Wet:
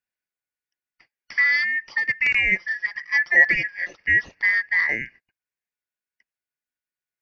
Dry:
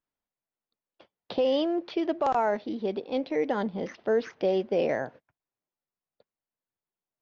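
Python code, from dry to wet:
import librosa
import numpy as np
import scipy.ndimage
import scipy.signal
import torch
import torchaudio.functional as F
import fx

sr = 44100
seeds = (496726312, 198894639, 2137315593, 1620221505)

y = fx.band_shuffle(x, sr, order='2143')
y = fx.comb(y, sr, ms=5.7, depth=0.91, at=(2.51, 3.93))
y = fx.upward_expand(y, sr, threshold_db=-36.0, expansion=1.5)
y = F.gain(torch.from_numpy(y), 7.5).numpy()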